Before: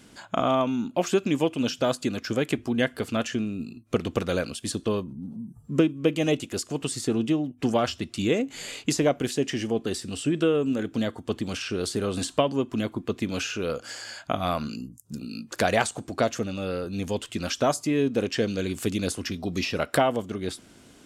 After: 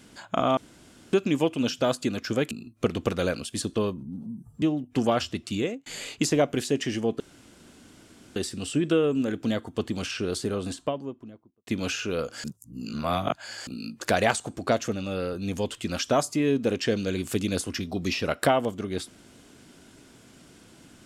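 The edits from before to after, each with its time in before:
0.57–1.13 s: room tone
2.51–3.61 s: delete
5.72–7.29 s: delete
8.00–8.53 s: fade out equal-power
9.87 s: insert room tone 1.16 s
11.65–13.18 s: studio fade out
13.95–15.18 s: reverse

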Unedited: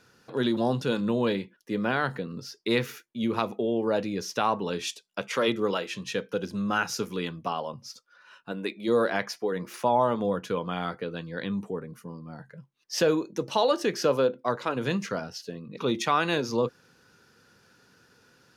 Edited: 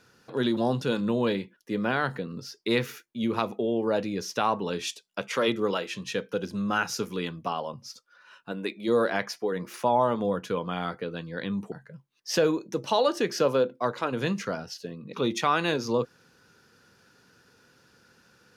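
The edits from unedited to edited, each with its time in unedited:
11.72–12.36 s: delete

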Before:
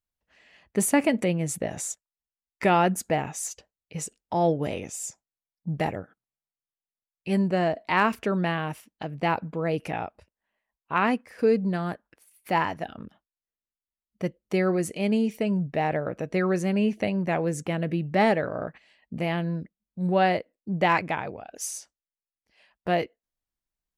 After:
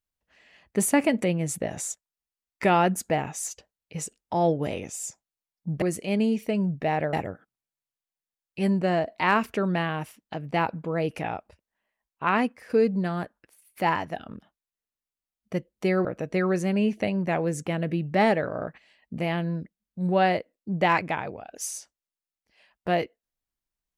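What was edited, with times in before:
14.74–16.05 s: move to 5.82 s

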